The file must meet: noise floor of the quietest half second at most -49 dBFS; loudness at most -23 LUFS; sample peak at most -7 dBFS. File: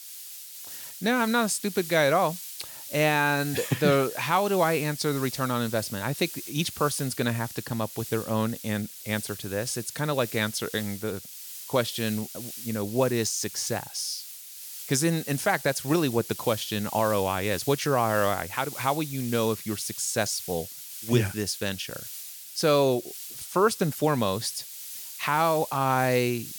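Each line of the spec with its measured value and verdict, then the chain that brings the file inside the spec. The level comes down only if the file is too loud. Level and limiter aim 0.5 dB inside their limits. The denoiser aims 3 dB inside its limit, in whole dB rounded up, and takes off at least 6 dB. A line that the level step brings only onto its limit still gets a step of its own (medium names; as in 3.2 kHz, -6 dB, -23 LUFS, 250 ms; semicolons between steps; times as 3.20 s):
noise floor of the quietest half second -42 dBFS: fail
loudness -27.0 LUFS: pass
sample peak -9.0 dBFS: pass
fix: noise reduction 10 dB, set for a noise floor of -42 dBFS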